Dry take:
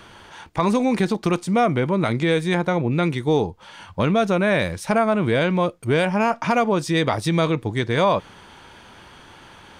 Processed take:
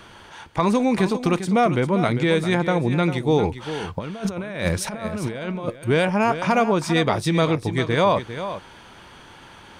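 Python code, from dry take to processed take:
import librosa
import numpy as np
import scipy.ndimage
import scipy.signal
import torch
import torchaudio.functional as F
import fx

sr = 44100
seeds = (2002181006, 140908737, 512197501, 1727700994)

y = fx.over_compress(x, sr, threshold_db=-25.0, ratio=-0.5, at=(3.43, 5.76))
y = y + 10.0 ** (-11.0 / 20.0) * np.pad(y, (int(398 * sr / 1000.0), 0))[:len(y)]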